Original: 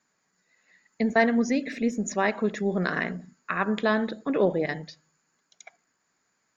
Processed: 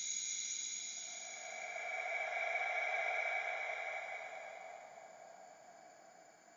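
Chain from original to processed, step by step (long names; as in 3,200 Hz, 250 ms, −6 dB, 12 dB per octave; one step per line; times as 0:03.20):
harmonic and percussive parts rebalanced percussive +9 dB
extreme stretch with random phases 42×, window 0.10 s, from 0:05.61
echo with a time of its own for lows and highs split 1,000 Hz, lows 772 ms, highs 201 ms, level −6.5 dB
level −2.5 dB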